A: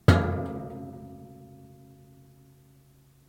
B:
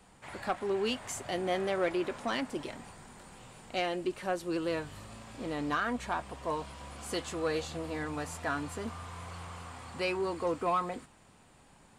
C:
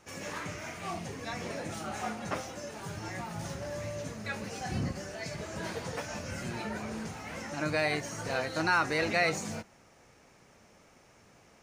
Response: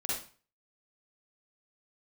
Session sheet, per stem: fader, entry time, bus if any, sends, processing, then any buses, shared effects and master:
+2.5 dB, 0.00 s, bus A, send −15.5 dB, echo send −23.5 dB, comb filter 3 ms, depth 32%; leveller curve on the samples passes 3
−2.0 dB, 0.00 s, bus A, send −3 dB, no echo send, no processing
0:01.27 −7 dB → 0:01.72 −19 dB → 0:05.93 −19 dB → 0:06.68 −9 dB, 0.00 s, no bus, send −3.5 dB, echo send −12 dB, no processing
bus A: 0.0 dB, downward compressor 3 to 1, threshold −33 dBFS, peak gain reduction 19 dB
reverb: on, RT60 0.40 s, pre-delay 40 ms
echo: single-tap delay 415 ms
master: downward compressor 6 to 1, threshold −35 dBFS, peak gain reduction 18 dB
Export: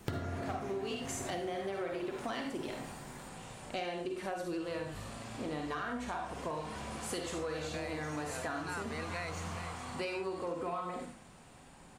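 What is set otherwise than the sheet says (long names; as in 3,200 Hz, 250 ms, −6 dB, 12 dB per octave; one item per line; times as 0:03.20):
stem A: missing leveller curve on the samples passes 3
stem C: send off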